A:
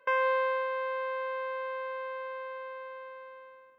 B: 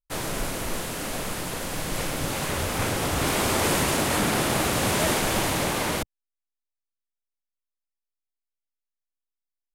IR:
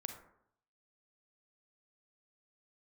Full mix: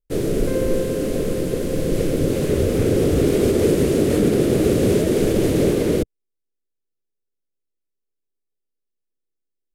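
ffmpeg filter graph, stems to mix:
-filter_complex "[0:a]adelay=400,volume=-9.5dB[link_01];[1:a]alimiter=limit=-16dB:level=0:latency=1:release=82,volume=-3.5dB[link_02];[link_01][link_02]amix=inputs=2:normalize=0,lowshelf=frequency=620:width_type=q:width=3:gain=12.5"

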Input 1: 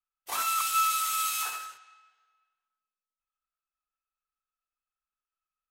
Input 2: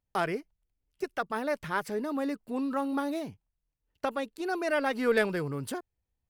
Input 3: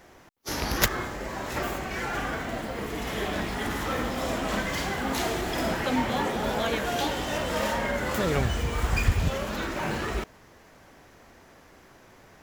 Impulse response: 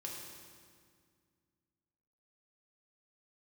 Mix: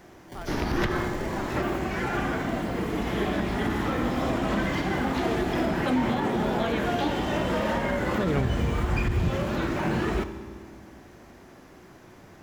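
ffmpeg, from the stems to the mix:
-filter_complex "[0:a]acrusher=samples=34:mix=1:aa=0.000001,volume=-9dB[link_01];[1:a]adelay=200,volume=-12.5dB[link_02];[2:a]acrossover=split=3900[link_03][link_04];[link_04]acompressor=threshold=-48dB:ratio=4:attack=1:release=60[link_05];[link_03][link_05]amix=inputs=2:normalize=0,equalizer=frequency=220:width=0.4:gain=7,volume=-3dB,asplit=2[link_06][link_07];[link_07]volume=-4dB[link_08];[3:a]atrim=start_sample=2205[link_09];[link_08][link_09]afir=irnorm=-1:irlink=0[link_10];[link_01][link_02][link_06][link_10]amix=inputs=4:normalize=0,equalizer=frequency=520:width_type=o:width=0.32:gain=-4,aeval=exprs='clip(val(0),-1,0.2)':channel_layout=same,alimiter=limit=-16.5dB:level=0:latency=1:release=85"

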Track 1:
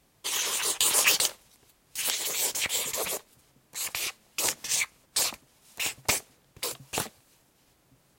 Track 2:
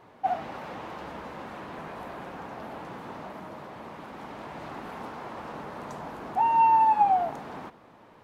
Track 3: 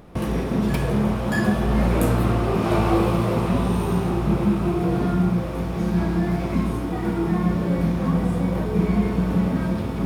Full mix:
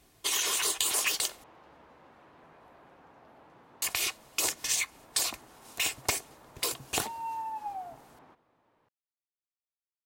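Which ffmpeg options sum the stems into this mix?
ffmpeg -i stem1.wav -i stem2.wav -filter_complex "[0:a]aecho=1:1:2.8:0.35,volume=2.5dB,asplit=3[link_01][link_02][link_03];[link_01]atrim=end=1.44,asetpts=PTS-STARTPTS,afade=type=out:start_time=1.436:duration=0.004:curve=hsin[link_04];[link_02]atrim=start=1.44:end=3.82,asetpts=PTS-STARTPTS,volume=0[link_05];[link_03]atrim=start=3.82,asetpts=PTS-STARTPTS,afade=type=in:duration=0.004:curve=hsin[link_06];[link_04][link_05][link_06]concat=n=3:v=0:a=1[link_07];[1:a]equalizer=frequency=200:width_type=o:width=0.28:gain=-8,adelay=650,volume=-16.5dB[link_08];[link_07][link_08]amix=inputs=2:normalize=0,acompressor=threshold=-25dB:ratio=10" out.wav

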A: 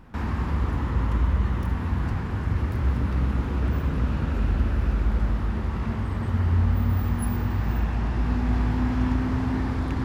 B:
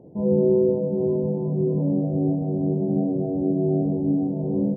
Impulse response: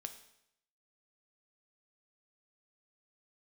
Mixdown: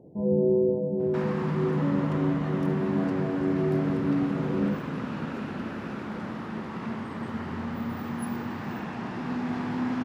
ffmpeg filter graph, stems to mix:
-filter_complex "[0:a]highpass=frequency=160:width=0.5412,highpass=frequency=160:width=1.3066,highshelf=frequency=11000:gain=-11.5,adelay=1000,volume=-1dB[link_01];[1:a]volume=-4dB[link_02];[link_01][link_02]amix=inputs=2:normalize=0"

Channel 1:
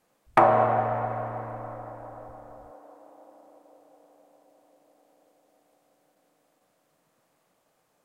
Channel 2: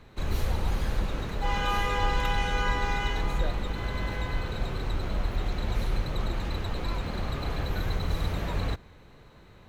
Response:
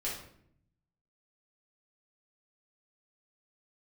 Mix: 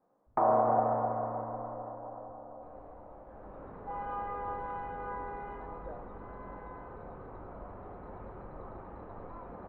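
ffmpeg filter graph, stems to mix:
-filter_complex "[0:a]lowshelf=frequency=310:gain=9.5,alimiter=limit=-13dB:level=0:latency=1:release=92,volume=-3dB,asplit=2[link_01][link_02];[link_02]volume=-9.5dB[link_03];[1:a]adelay=2450,volume=-8dB,afade=type=in:start_time=3.25:duration=0.5:silence=0.316228,asplit=2[link_04][link_05];[link_05]volume=-7dB[link_06];[2:a]atrim=start_sample=2205[link_07];[link_03][link_06]amix=inputs=2:normalize=0[link_08];[link_08][link_07]afir=irnorm=-1:irlink=0[link_09];[link_01][link_04][link_09]amix=inputs=3:normalize=0,lowpass=frequency=1100:width=0.5412,lowpass=frequency=1100:width=1.3066,aemphasis=mode=production:type=riaa"

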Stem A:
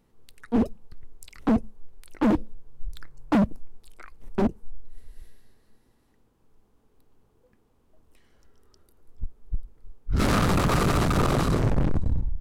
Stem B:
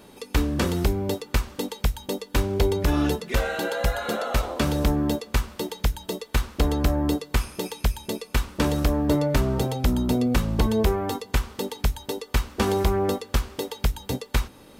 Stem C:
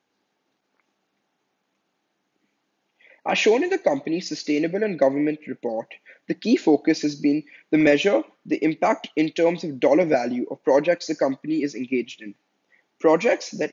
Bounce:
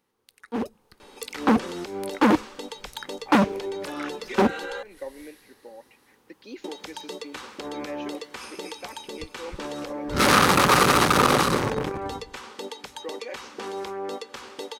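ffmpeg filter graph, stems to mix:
ffmpeg -i stem1.wav -i stem2.wav -i stem3.wav -filter_complex "[0:a]highpass=frequency=690:poles=1,bandreject=frequency=7500:width=16,dynaudnorm=framelen=130:gausssize=13:maxgain=14dB,volume=-1.5dB[link_01];[1:a]alimiter=limit=-17.5dB:level=0:latency=1:release=82,adelay=1000,volume=3dB,asplit=3[link_02][link_03][link_04];[link_02]atrim=end=4.83,asetpts=PTS-STARTPTS,afade=type=out:start_time=4.826:duration=0.004:curve=hsin[link_05];[link_03]atrim=start=4.83:end=6.64,asetpts=PTS-STARTPTS,volume=0[link_06];[link_04]atrim=start=6.64,asetpts=PTS-STARTPTS,afade=type=in:duration=0.004:curve=hsin[link_07];[link_05][link_06][link_07]concat=n=3:v=0:a=1[link_08];[2:a]volume=-16dB[link_09];[link_08][link_09]amix=inputs=2:normalize=0,highpass=390,lowpass=7500,alimiter=limit=-24dB:level=0:latency=1:release=114,volume=0dB[link_10];[link_01][link_10]amix=inputs=2:normalize=0,asuperstop=centerf=660:order=4:qfactor=7.2" out.wav

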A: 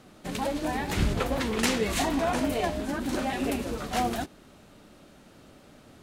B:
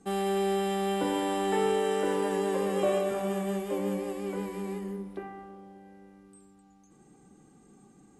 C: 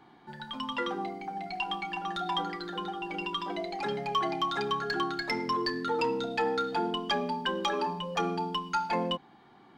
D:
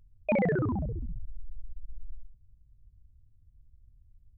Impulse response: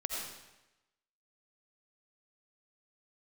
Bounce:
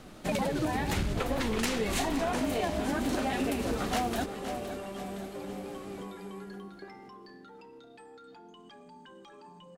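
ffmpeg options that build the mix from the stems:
-filter_complex "[0:a]aeval=exprs='clip(val(0),-1,0.106)':channel_layout=same,volume=3dB,asplit=2[link_01][link_02];[link_02]volume=-14.5dB[link_03];[1:a]alimiter=level_in=0.5dB:limit=-24dB:level=0:latency=1,volume=-0.5dB,adelay=1650,volume=-8dB[link_04];[2:a]alimiter=level_in=8.5dB:limit=-24dB:level=0:latency=1,volume=-8.5dB,adelay=1600,volume=-12.5dB[link_05];[3:a]volume=-3dB[link_06];[link_03]aecho=0:1:515|1030|1545|2060|2575|3090|3605:1|0.5|0.25|0.125|0.0625|0.0312|0.0156[link_07];[link_01][link_04][link_05][link_06][link_07]amix=inputs=5:normalize=0,acompressor=threshold=-26dB:ratio=12"

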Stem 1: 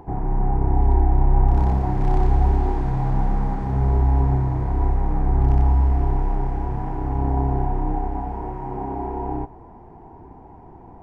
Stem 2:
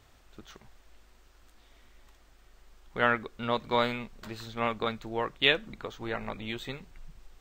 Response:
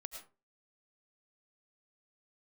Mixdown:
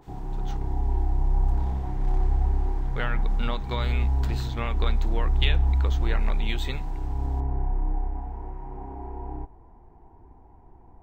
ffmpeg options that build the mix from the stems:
-filter_complex "[0:a]asubboost=boost=3:cutoff=76,volume=-10.5dB[link_01];[1:a]acompressor=threshold=-30dB:ratio=12,adynamicequalizer=threshold=0.00631:dfrequency=1800:dqfactor=0.7:tfrequency=1800:tqfactor=0.7:attack=5:release=100:ratio=0.375:range=2:mode=boostabove:tftype=highshelf,volume=2.5dB[link_02];[link_01][link_02]amix=inputs=2:normalize=0,equalizer=frequency=620:width=1.5:gain=-2"

